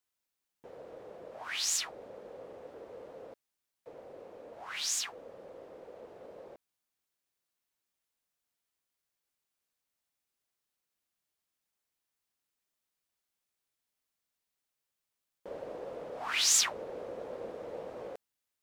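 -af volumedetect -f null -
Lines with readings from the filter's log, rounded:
mean_volume: -41.6 dB
max_volume: -13.2 dB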